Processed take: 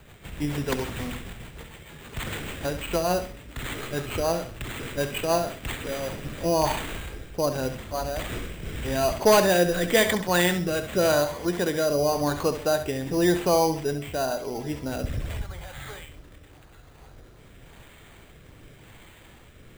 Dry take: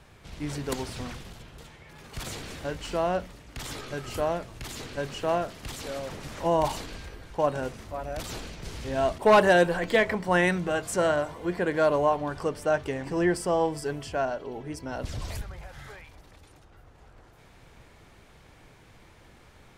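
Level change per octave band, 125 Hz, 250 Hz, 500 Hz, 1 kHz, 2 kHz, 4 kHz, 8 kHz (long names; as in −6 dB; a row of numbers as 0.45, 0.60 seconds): +4.0, +3.0, +1.5, 0.0, +0.5, +6.0, +7.5 decibels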